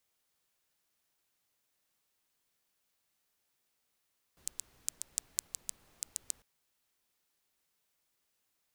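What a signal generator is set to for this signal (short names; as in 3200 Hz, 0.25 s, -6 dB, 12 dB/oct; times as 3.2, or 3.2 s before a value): rain from filtered ticks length 2.05 s, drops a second 5.6, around 7600 Hz, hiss -22 dB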